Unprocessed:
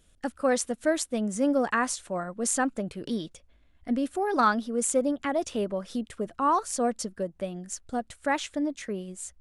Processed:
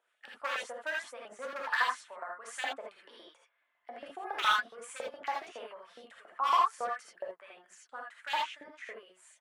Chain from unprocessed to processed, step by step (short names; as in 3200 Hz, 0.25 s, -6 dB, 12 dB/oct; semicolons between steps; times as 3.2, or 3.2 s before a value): three-band isolator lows -23 dB, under 230 Hz, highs -18 dB, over 2300 Hz; notch 740 Hz, Q 20; wavefolder -19 dBFS; LFO high-pass saw up 7.2 Hz 700–3500 Hz; non-linear reverb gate 0.1 s rising, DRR -2 dB; gain -6.5 dB